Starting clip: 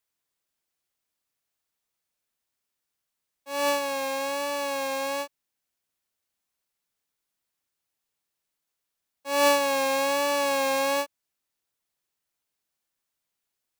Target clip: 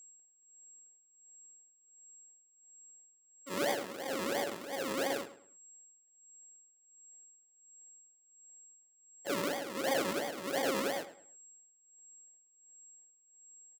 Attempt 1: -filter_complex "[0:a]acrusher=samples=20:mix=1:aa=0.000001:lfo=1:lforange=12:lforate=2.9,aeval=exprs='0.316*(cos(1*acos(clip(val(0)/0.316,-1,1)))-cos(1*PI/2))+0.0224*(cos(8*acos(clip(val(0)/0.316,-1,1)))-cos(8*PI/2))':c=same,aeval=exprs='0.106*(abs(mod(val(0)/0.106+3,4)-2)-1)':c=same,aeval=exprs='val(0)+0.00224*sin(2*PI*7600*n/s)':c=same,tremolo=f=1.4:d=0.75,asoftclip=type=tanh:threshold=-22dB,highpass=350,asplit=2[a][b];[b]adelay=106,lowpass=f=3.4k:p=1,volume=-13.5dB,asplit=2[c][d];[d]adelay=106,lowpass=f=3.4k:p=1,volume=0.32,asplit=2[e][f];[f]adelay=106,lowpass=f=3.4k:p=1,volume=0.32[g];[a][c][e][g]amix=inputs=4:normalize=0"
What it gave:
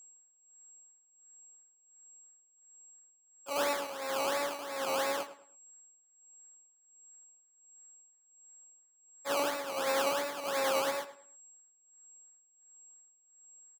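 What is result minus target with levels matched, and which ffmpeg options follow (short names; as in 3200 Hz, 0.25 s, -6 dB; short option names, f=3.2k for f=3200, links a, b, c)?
decimation with a swept rate: distortion -24 dB
-filter_complex "[0:a]acrusher=samples=46:mix=1:aa=0.000001:lfo=1:lforange=27.6:lforate=2.9,aeval=exprs='0.316*(cos(1*acos(clip(val(0)/0.316,-1,1)))-cos(1*PI/2))+0.0224*(cos(8*acos(clip(val(0)/0.316,-1,1)))-cos(8*PI/2))':c=same,aeval=exprs='0.106*(abs(mod(val(0)/0.106+3,4)-2)-1)':c=same,aeval=exprs='val(0)+0.00224*sin(2*PI*7600*n/s)':c=same,tremolo=f=1.4:d=0.75,asoftclip=type=tanh:threshold=-22dB,highpass=350,asplit=2[a][b];[b]adelay=106,lowpass=f=3.4k:p=1,volume=-13.5dB,asplit=2[c][d];[d]adelay=106,lowpass=f=3.4k:p=1,volume=0.32,asplit=2[e][f];[f]adelay=106,lowpass=f=3.4k:p=1,volume=0.32[g];[a][c][e][g]amix=inputs=4:normalize=0"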